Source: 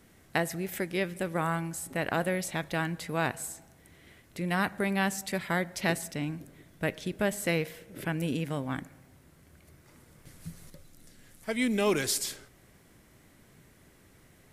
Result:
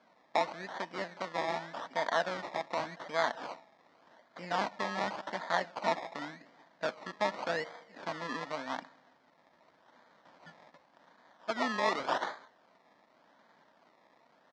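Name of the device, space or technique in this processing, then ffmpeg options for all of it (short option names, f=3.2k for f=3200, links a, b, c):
circuit-bent sampling toy: -af "aecho=1:1:4.4:0.42,acrusher=samples=23:mix=1:aa=0.000001:lfo=1:lforange=13.8:lforate=0.87,highpass=410,equalizer=f=420:t=q:w=4:g=-9,equalizer=f=620:t=q:w=4:g=4,equalizer=f=920:t=q:w=4:g=5,equalizer=f=1.8k:t=q:w=4:g=6,equalizer=f=2.7k:t=q:w=4:g=-6,lowpass=f=5.2k:w=0.5412,lowpass=f=5.2k:w=1.3066,volume=-2.5dB"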